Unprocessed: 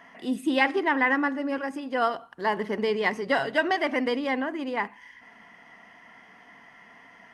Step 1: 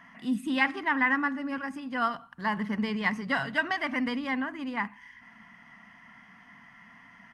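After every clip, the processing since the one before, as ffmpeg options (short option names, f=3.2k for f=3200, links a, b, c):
-af "firequalizer=gain_entry='entry(220,0);entry(370,-19);entry(1100,-4);entry(3400,-8)':delay=0.05:min_phase=1,volume=4dB"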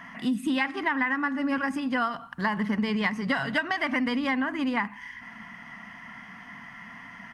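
-af "acompressor=threshold=-32dB:ratio=10,volume=9dB"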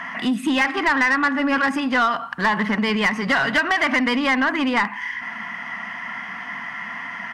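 -filter_complex "[0:a]asplit=2[a][b];[b]highpass=f=720:p=1,volume=17dB,asoftclip=type=tanh:threshold=-13dB[c];[a][c]amix=inputs=2:normalize=0,lowpass=f=3.1k:p=1,volume=-6dB,volume=3.5dB"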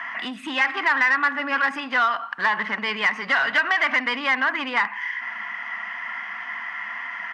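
-af "bandpass=f=1.8k:t=q:w=0.64:csg=0"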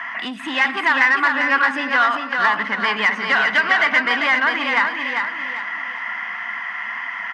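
-af "aecho=1:1:396|792|1188|1584|1980:0.562|0.219|0.0855|0.0334|0.013,volume=3dB"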